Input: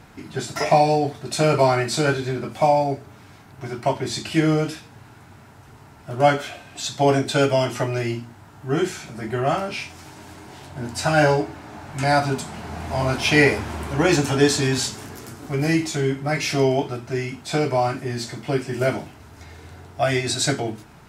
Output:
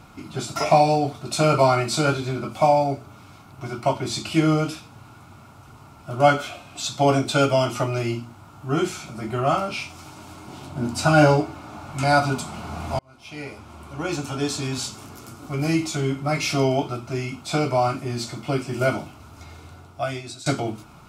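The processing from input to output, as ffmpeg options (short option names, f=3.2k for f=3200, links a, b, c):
-filter_complex "[0:a]asettb=1/sr,asplit=3[a][b][c];[a]atrim=end=10.474[d];[b]atrim=start=10.47:end=11.4,asetpts=PTS-STARTPTS,afade=t=in:d=0.004:c=qsin,afade=t=out:st=0.926:d=0.004:c=qsin,equalizer=f=230:t=o:w=1.5:g=6.5[e];[c]atrim=start=11.396[f];[d][e]acrossfade=d=0.004:c1=hsin:c2=qsin[g];[g][f]acrossfade=d=0.004:c1=qsin:c2=hsin,asplit=3[h][i][j];[h]atrim=end=12.99,asetpts=PTS-STARTPTS,afade=t=out:st=12.986:d=0.004:c=hsin[k];[i]atrim=start=12.99:end=20.46,asetpts=PTS-STARTPTS,afade=t=in:d=3.22,afade=t=out:st=6.54:d=0.93:silence=0.0944061[l];[j]atrim=start=20.46,asetpts=PTS-STARTPTS,afade=t=in:d=0.004:c=hsin:silence=0.0944061[m];[k][l][m]concat=n=3:v=0:a=1,superequalizer=7b=0.631:10b=1.58:11b=0.355"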